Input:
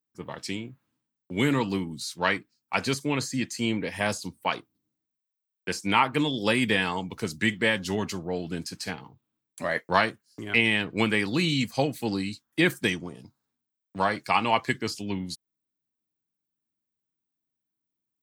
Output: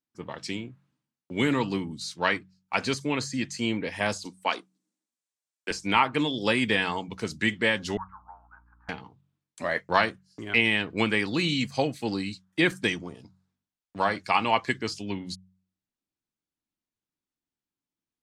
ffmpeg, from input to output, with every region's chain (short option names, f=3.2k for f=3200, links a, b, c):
-filter_complex "[0:a]asettb=1/sr,asplit=3[a][b][c];[a]atrim=end=4.254[d];[b]atrim=start=4.25:end=5.71,asetpts=PTS-STARTPTS,afade=t=in:d=0.004:c=qsin,afade=t=out:st=1.456:d=0.004:c=qsin,highpass=f=210:w=0.5412,highpass=f=210:w=1.3066,equalizer=f=8.1k:w=1.1:g=10.5[e];[c]atrim=start=5.706[f];[d][e]acrossfade=d=0.004:c1=hsin:c2=qsin[g];[g][f]acrossfade=d=0.004:c1=qsin:c2=hsin,asettb=1/sr,asplit=3[h][i][j];[h]atrim=end=7.974[k];[i]atrim=start=7.97:end=8.89,asetpts=PTS-STARTPTS,afade=t=in:d=0.004:c=qsin,afade=t=out:st=0.916:d=0.004:c=qsin,asuperpass=centerf=1100:order=8:qfactor=1.8,aeval=exprs='val(0)+0.000794*(sin(2*PI*60*n/s)+sin(2*PI*2*60*n/s)/2+sin(2*PI*3*60*n/s)/3+sin(2*PI*4*60*n/s)/4+sin(2*PI*5*60*n/s)/5)':c=same[l];[j]atrim=start=8.886[m];[k][l]acrossfade=d=0.004:c1=hsin:c2=qsin[n];[n][m]acrossfade=d=0.004:c1=qsin:c2=hsin,lowpass=7.7k,bandreject=f=46.66:t=h:w=4,bandreject=f=93.32:t=h:w=4,bandreject=f=139.98:t=h:w=4,bandreject=f=186.64:t=h:w=4,asubboost=boost=3:cutoff=59"